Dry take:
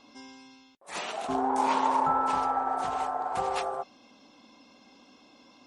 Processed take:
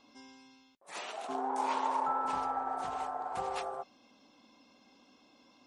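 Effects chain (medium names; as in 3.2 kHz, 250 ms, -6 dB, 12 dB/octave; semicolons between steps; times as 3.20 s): 0.92–2.25 s: high-pass 290 Hz 12 dB/octave; trim -6.5 dB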